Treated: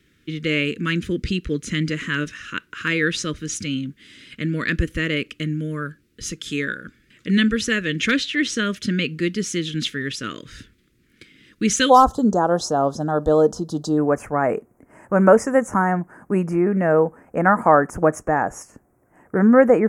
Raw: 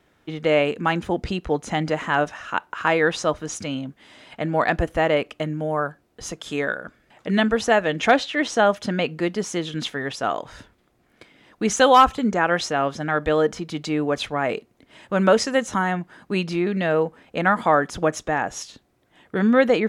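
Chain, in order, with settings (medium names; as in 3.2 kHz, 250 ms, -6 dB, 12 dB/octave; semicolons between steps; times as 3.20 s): Butterworth band-stop 780 Hz, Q 0.57, from 11.89 s 2.3 kHz, from 13.97 s 3.7 kHz; trim +4 dB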